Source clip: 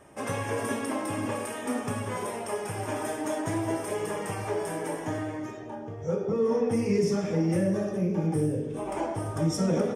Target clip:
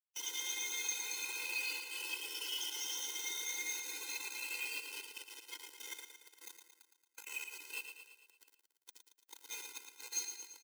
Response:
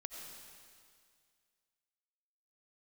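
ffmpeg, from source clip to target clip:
-af "afftfilt=real='re*pow(10,21/40*sin(2*PI*(1.3*log(max(b,1)*sr/1024/100)/log(2)-(0.37)*(pts-256)/sr)))':imag='im*pow(10,21/40*sin(2*PI*(1.3*log(max(b,1)*sr/1024/100)/log(2)-(0.37)*(pts-256)/sr)))':win_size=1024:overlap=0.75,acompressor=threshold=-28dB:ratio=3,alimiter=level_in=3dB:limit=-24dB:level=0:latency=1:release=71,volume=-3dB,asetrate=52920,aresample=44100,afftfilt=real='re*between(b*sr/4096,2200,6700)':imag='im*between(b*sr/4096,2200,6700)':win_size=4096:overlap=0.75,flanger=delay=2.7:depth=1.2:regen=-52:speed=0.53:shape=triangular,crystalizer=i=6.5:c=0,acrusher=bits=6:mix=0:aa=0.000001,afreqshift=-120,atempo=0.78,aecho=1:1:113|226|339|452|565|678|791:0.422|0.236|0.132|0.0741|0.0415|0.0232|0.013,afftfilt=real='re*eq(mod(floor(b*sr/1024/270),2),1)':imag='im*eq(mod(floor(b*sr/1024/270),2),1)':win_size=1024:overlap=0.75,volume=3.5dB"

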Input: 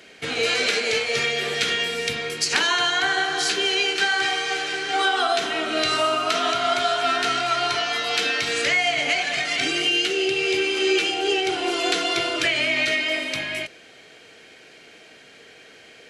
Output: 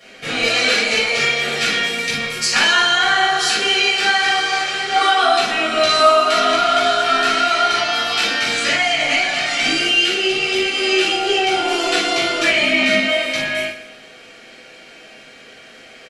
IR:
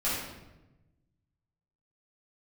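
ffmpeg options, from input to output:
-filter_complex "[0:a]asettb=1/sr,asplit=3[a][b][c];[a]atrim=end=12.564[d];[b]atrim=start=12.56:end=13.05,asetpts=PTS-STARTPTS,afade=t=in:d=0.004:c=qsin,afade=t=out:st=0.486:d=0.004:c=qsin,equalizer=f=200:t=o:w=0.72:g=14[e];[c]atrim=start=13.046[f];[d][e]acrossfade=d=0.004:c1=hsin:c2=qsin[g];[g][f]acrossfade=d=0.004:c1=qsin:c2=hsin,aecho=1:1:119|238|357|476:0.211|0.0888|0.0373|0.0157[h];[1:a]atrim=start_sample=2205,atrim=end_sample=3528[i];[h][i]afir=irnorm=-1:irlink=0,volume=-1dB"

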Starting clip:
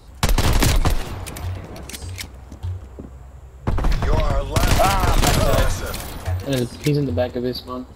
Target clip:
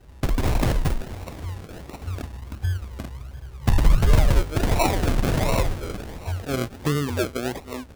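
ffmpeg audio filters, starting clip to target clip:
-filter_complex "[0:a]asettb=1/sr,asplit=3[a][b][c];[a]atrim=end=2.074[d];[b]atrim=start=2.07:end=4.43,asetpts=PTS-STARTPTS,afade=t=in:d=0.004:c=qsin,afade=t=out:st=2.356:d=0.004:c=qsin,lowshelf=f=320:g=8[e];[c]atrim=start=4.426[f];[d][e]acrossfade=d=0.004:c1=hsin:c2=qsin[g];[g][f]acrossfade=d=0.004:c1=qsin:c2=hsin,acrusher=samples=38:mix=1:aa=0.000001:lfo=1:lforange=22.8:lforate=1.4,volume=-4.5dB"

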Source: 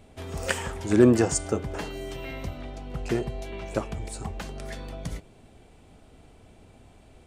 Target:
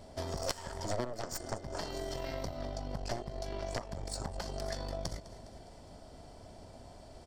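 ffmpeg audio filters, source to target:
-af "equalizer=f=930:w=6:g=7.5,aecho=1:1:205|410|615|820:0.106|0.0583|0.032|0.0176,aeval=exprs='0.473*(cos(1*acos(clip(val(0)/0.473,-1,1)))-cos(1*PI/2))+0.188*(cos(3*acos(clip(val(0)/0.473,-1,1)))-cos(3*PI/2))+0.0473*(cos(6*acos(clip(val(0)/0.473,-1,1)))-cos(6*PI/2))+0.00841*(cos(7*acos(clip(val(0)/0.473,-1,1)))-cos(7*PI/2))':c=same,acompressor=threshold=-44dB:ratio=10,superequalizer=8b=2.24:12b=0.501:14b=3.16:15b=1.41,volume=9.5dB"

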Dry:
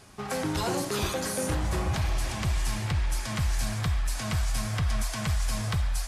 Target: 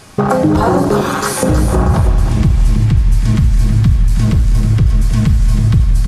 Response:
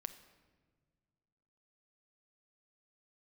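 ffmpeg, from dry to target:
-filter_complex "[0:a]afwtdn=0.0355,asettb=1/sr,asplit=3[a][b][c];[a]atrim=end=1.014[d];[b]atrim=start=1.01:end=1.43,asetpts=PTS-STARTPTS,afade=t=in:d=0.004:c=qsin,afade=t=out:st=0.416:d=0.004:c=qsin,highpass=f=1.1k:w=0.5412,highpass=f=1.1k:w=1.3066[e];[c]atrim=start=1.426[f];[d][e]acrossfade=d=0.004:c1=hsin:c2=qsin[g];[g][f]acrossfade=d=0.004:c1=qsin:c2=hsin,acompressor=threshold=-41dB:ratio=4,asettb=1/sr,asplit=3[h][i][j];[h]atrim=end=4.064[k];[i]atrim=start=4.06:end=4.81,asetpts=PTS-STARTPTS,afade=t=in:d=0.004:c=qsin,afade=t=out:st=0.746:d=0.004:c=qsin,asoftclip=type=hard:threshold=-37dB[l];[j]atrim=start=4.806[m];[k][l]acrossfade=d=0.004:c1=hsin:c2=qsin[n];[n][m]acrossfade=d=0.004:c1=qsin:c2=hsin,aecho=1:1:319|638|957|1276:0.335|0.127|0.0484|0.0184[o];[1:a]atrim=start_sample=2205[p];[o][p]afir=irnorm=-1:irlink=0,alimiter=level_in=34.5dB:limit=-1dB:release=50:level=0:latency=1,volume=-1dB"

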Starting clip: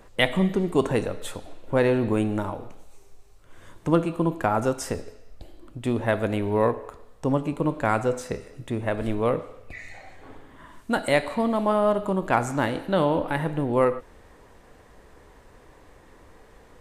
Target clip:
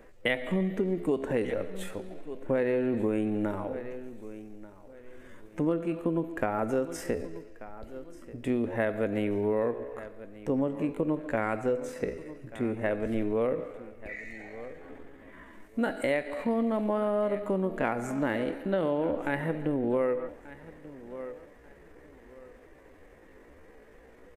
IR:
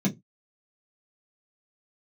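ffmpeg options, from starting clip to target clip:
-filter_complex "[0:a]equalizer=f=125:t=o:w=1:g=-5,equalizer=f=250:t=o:w=1:g=4,equalizer=f=500:t=o:w=1:g=5,equalizer=f=1k:t=o:w=1:g=-5,equalizer=f=2k:t=o:w=1:g=6,equalizer=f=4k:t=o:w=1:g=-6,equalizer=f=8k:t=o:w=1:g=-4,atempo=0.69,asplit=2[a][b];[b]aecho=0:1:1186|2372:0.106|0.0265[c];[a][c]amix=inputs=2:normalize=0,acompressor=threshold=-20dB:ratio=6,volume=-4dB"

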